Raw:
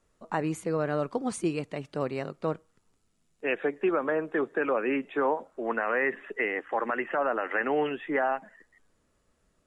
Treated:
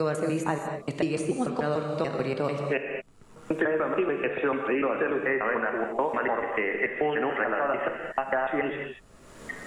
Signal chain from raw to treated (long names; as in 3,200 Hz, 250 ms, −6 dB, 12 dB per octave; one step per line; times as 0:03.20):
slices reordered back to front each 146 ms, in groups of 6
reverb whose tail is shaped and stops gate 250 ms flat, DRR 4 dB
multiband upward and downward compressor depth 100%